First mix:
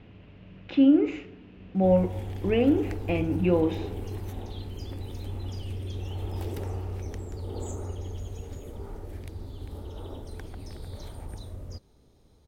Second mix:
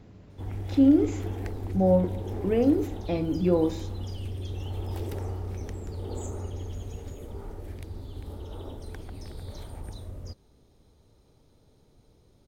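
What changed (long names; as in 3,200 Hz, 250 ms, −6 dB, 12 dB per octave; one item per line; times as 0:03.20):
speech: remove low-pass with resonance 2,800 Hz, resonance Q 3.9
background: entry −1.45 s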